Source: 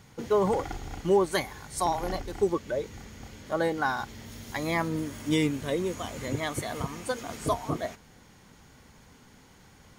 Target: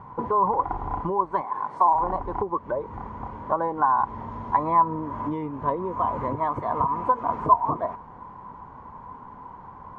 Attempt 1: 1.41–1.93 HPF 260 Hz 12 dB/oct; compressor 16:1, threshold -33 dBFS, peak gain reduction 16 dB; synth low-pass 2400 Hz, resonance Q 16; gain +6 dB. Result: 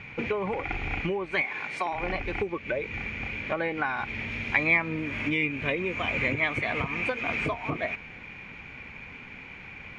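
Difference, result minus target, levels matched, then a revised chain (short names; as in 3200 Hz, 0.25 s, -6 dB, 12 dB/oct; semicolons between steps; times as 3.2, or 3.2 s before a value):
2000 Hz band +20.0 dB
1.41–1.93 HPF 260 Hz 12 dB/oct; compressor 16:1, threshold -33 dBFS, peak gain reduction 16 dB; synth low-pass 1000 Hz, resonance Q 16; gain +6 dB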